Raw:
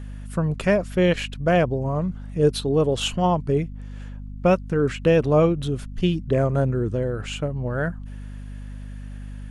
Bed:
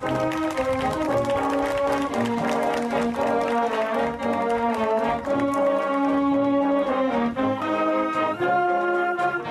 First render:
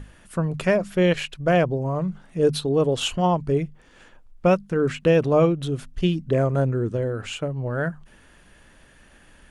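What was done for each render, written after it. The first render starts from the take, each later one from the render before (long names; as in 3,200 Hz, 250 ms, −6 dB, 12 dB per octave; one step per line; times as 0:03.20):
mains-hum notches 50/100/150/200/250 Hz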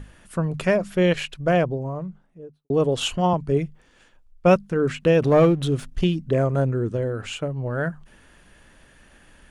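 0:01.35–0:02.70: fade out and dull
0:03.33–0:04.56: multiband upward and downward expander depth 40%
0:05.22–0:06.04: leveller curve on the samples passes 1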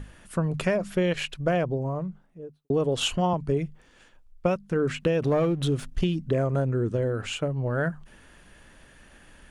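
downward compressor 10 to 1, threshold −20 dBFS, peak gain reduction 11 dB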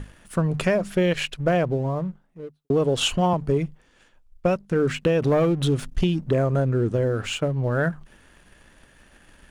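leveller curve on the samples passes 1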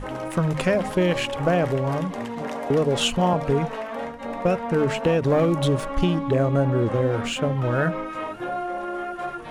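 mix in bed −7.5 dB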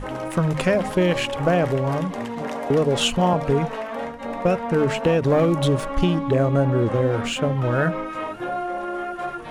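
level +1.5 dB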